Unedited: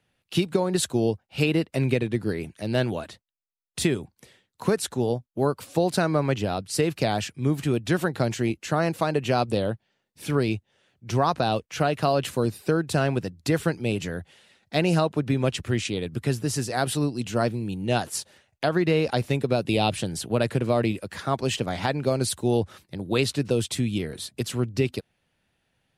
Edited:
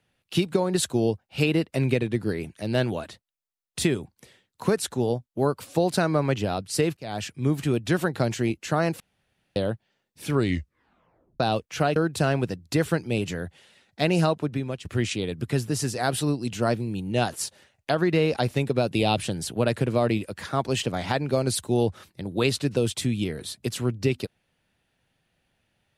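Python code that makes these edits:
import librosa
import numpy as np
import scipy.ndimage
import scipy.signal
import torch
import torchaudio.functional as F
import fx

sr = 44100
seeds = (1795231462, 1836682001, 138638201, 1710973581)

y = fx.edit(x, sr, fx.fade_in_span(start_s=6.97, length_s=0.34),
    fx.room_tone_fill(start_s=9.0, length_s=0.56),
    fx.tape_stop(start_s=10.33, length_s=1.07),
    fx.cut(start_s=11.96, length_s=0.74),
    fx.fade_out_to(start_s=15.04, length_s=0.55, floor_db=-14.0), tone=tone)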